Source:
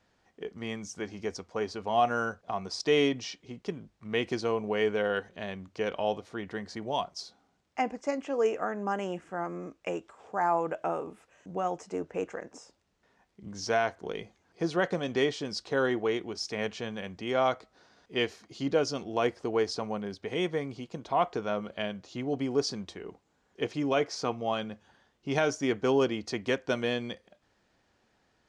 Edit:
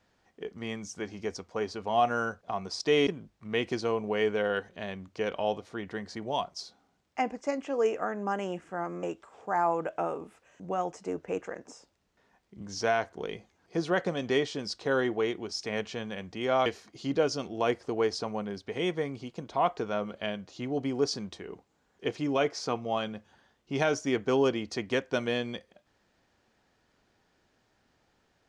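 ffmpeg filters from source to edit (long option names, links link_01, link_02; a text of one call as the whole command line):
ffmpeg -i in.wav -filter_complex "[0:a]asplit=4[link_01][link_02][link_03][link_04];[link_01]atrim=end=3.072[link_05];[link_02]atrim=start=3.668:end=9.632[link_06];[link_03]atrim=start=9.888:end=17.522[link_07];[link_04]atrim=start=18.218[link_08];[link_05][link_06]acrossfade=duration=0.004:curve1=hsin:curve2=hsin[link_09];[link_09][link_07]acrossfade=duration=0.004:curve1=hsin:curve2=hsin[link_10];[link_10][link_08]acrossfade=duration=0.004:curve1=hsin:curve2=hsin" out.wav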